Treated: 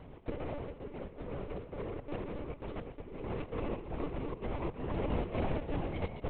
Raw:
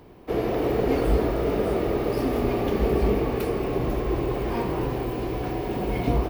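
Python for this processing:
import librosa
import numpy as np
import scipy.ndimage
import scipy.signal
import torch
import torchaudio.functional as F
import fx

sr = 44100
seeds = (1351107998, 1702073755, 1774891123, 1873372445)

p1 = fx.over_compress(x, sr, threshold_db=-29.0, ratio=-0.5)
p2 = fx.step_gate(p1, sr, bpm=166, pattern='xx.xxxxx.x', floor_db=-24.0, edge_ms=4.5)
p3 = p2 + fx.echo_feedback(p2, sr, ms=130, feedback_pct=40, wet_db=-11, dry=0)
p4 = (np.kron(scipy.signal.resample_poly(p3, 1, 6), np.eye(6)[0]) * 6)[:len(p3)]
p5 = fx.lpc_monotone(p4, sr, seeds[0], pitch_hz=290.0, order=10)
y = F.gain(torch.from_numpy(p5), -7.0).numpy()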